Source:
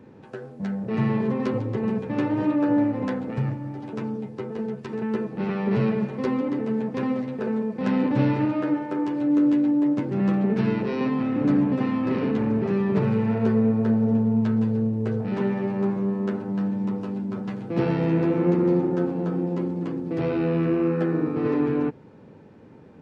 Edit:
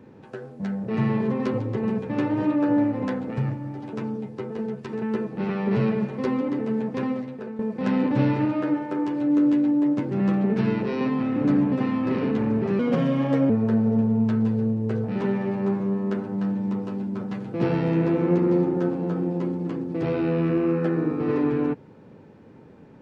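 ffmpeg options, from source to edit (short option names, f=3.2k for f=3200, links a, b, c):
-filter_complex "[0:a]asplit=4[a][b][c][d];[a]atrim=end=7.59,asetpts=PTS-STARTPTS,afade=t=out:st=6.98:d=0.61:silence=0.251189[e];[b]atrim=start=7.59:end=12.794,asetpts=PTS-STARTPTS,afade=t=in:d=0.004:c=hsin:silence=0.251189[f];[c]atrim=start=12.79:end=13.66,asetpts=PTS-STARTPTS,asetrate=54243,aresample=44100[g];[d]atrim=start=13.656[h];[e][f]concat=n=2:v=0:a=1[i];[i][g]acrossfade=d=0.004:c1=hsin:c2=hsin[j];[j][h]acrossfade=d=0.004:c1=hsin:c2=hsin"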